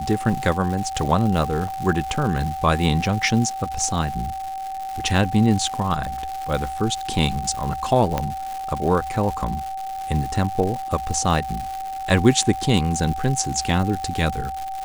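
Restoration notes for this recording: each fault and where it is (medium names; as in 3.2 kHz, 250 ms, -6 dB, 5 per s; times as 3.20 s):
crackle 270 per s -27 dBFS
whine 770 Hz -27 dBFS
1.68 s: dropout 4.1 ms
8.18 s: pop -8 dBFS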